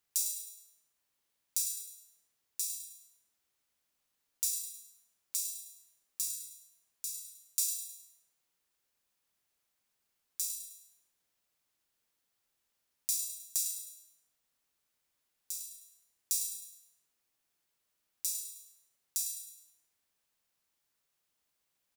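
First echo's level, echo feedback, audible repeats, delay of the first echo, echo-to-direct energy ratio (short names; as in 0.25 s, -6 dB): -8.5 dB, 42%, 4, 0.104 s, -7.5 dB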